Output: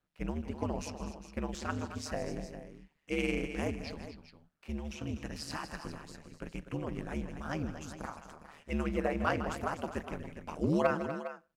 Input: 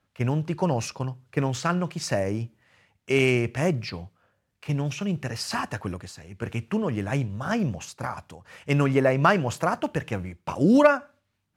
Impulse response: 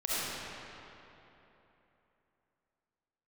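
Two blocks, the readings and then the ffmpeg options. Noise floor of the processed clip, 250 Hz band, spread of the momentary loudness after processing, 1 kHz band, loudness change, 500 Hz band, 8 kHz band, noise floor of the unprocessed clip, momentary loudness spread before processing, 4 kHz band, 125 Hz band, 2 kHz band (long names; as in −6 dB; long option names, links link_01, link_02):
−73 dBFS, −10.5 dB, 16 LU, −10.5 dB, −11.5 dB, −11.0 dB, −11.0 dB, −75 dBFS, 14 LU, −10.5 dB, −13.5 dB, −11.0 dB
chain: -af "aecho=1:1:156|245|407:0.224|0.266|0.237,aeval=exprs='val(0)*sin(2*PI*75*n/s)':channel_layout=same,volume=-8.5dB"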